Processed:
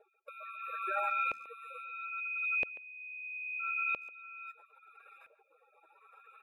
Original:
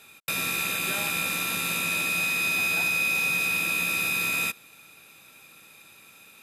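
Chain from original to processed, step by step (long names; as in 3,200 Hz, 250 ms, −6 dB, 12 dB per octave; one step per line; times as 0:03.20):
high-pass filter 380 Hz 24 dB per octave
gate on every frequency bin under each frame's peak −15 dB strong
high shelf with overshoot 7,300 Hz +12.5 dB, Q 1.5
auto-filter low-pass saw up 0.76 Hz 530–1,700 Hz
far-end echo of a speakerphone 140 ms, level −16 dB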